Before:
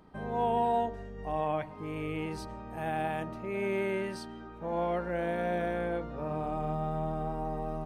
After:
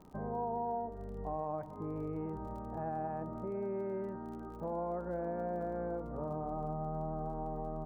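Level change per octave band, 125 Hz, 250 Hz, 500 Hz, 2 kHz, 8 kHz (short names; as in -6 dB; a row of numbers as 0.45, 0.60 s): -4.0 dB, -4.5 dB, -5.5 dB, -17.0 dB, under -15 dB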